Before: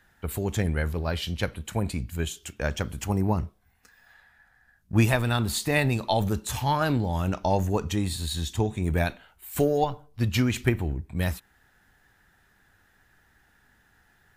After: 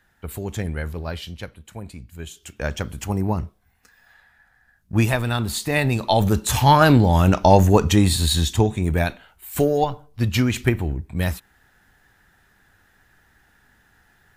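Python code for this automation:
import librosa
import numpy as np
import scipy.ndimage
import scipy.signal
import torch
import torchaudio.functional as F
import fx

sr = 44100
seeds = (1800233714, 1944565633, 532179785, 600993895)

y = fx.gain(x, sr, db=fx.line((1.11, -1.0), (1.54, -8.0), (2.12, -8.0), (2.61, 2.0), (5.69, 2.0), (6.67, 11.0), (8.31, 11.0), (8.94, 4.0)))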